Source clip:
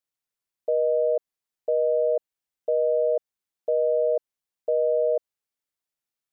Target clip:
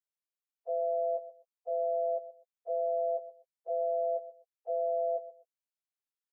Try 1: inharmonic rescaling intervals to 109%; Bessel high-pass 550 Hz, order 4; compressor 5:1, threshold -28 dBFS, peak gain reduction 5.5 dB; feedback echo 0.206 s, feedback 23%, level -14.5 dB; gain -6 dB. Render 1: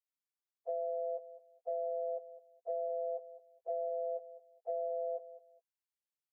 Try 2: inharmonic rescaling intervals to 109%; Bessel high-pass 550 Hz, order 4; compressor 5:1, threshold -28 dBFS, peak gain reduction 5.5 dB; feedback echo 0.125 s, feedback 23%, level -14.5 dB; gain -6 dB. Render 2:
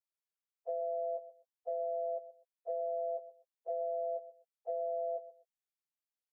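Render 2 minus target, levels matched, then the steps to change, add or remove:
compressor: peak gain reduction +5.5 dB
remove: compressor 5:1, threshold -28 dBFS, peak gain reduction 5.5 dB

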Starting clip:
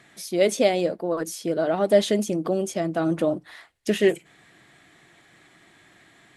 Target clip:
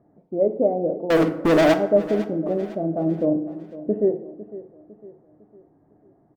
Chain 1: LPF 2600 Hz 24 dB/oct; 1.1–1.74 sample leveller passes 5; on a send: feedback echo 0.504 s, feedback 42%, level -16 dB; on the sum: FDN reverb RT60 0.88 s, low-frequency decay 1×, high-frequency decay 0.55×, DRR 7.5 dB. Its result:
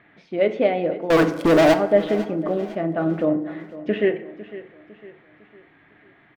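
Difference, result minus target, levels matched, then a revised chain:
2000 Hz band +2.5 dB
LPF 740 Hz 24 dB/oct; 1.1–1.74 sample leveller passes 5; on a send: feedback echo 0.504 s, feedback 42%, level -16 dB; on the sum: FDN reverb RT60 0.88 s, low-frequency decay 1×, high-frequency decay 0.55×, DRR 7.5 dB

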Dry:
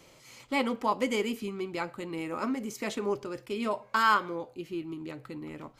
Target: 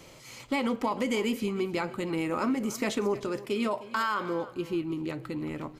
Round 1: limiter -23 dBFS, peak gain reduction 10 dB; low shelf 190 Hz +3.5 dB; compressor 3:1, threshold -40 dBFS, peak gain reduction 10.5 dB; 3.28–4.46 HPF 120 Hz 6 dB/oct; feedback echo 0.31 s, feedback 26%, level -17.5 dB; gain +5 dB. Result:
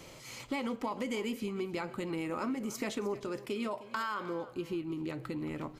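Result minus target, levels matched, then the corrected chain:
compressor: peak gain reduction +7 dB
limiter -23 dBFS, peak gain reduction 10 dB; low shelf 190 Hz +3.5 dB; compressor 3:1, threshold -29.5 dBFS, peak gain reduction 3.5 dB; 3.28–4.46 HPF 120 Hz 6 dB/oct; feedback echo 0.31 s, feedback 26%, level -17.5 dB; gain +5 dB

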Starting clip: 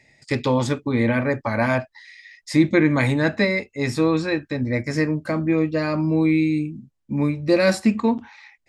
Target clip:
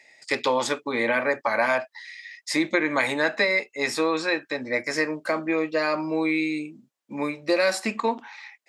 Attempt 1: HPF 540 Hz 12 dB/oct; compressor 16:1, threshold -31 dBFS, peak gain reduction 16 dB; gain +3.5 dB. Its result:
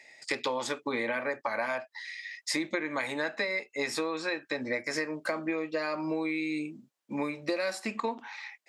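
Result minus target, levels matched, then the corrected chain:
compressor: peak gain reduction +10 dB
HPF 540 Hz 12 dB/oct; compressor 16:1, threshold -20.5 dBFS, peak gain reduction 6.5 dB; gain +3.5 dB

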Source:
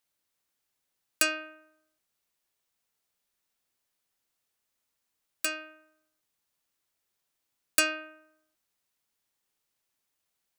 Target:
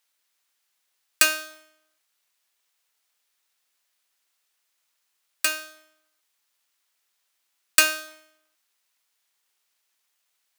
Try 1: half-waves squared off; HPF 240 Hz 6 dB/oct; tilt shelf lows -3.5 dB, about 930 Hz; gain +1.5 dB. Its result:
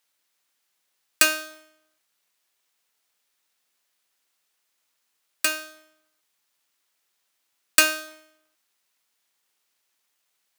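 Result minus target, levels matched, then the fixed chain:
250 Hz band +6.0 dB
half-waves squared off; HPF 670 Hz 6 dB/oct; tilt shelf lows -3.5 dB, about 930 Hz; gain +1.5 dB

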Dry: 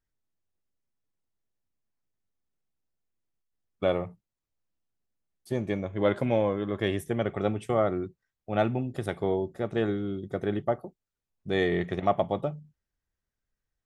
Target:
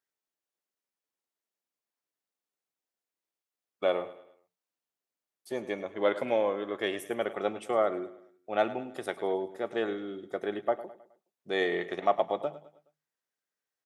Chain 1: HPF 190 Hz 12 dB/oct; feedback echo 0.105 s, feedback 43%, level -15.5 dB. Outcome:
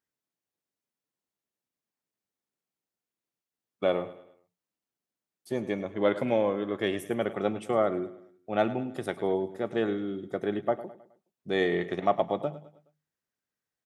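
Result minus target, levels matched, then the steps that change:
250 Hz band +4.0 dB
change: HPF 400 Hz 12 dB/oct

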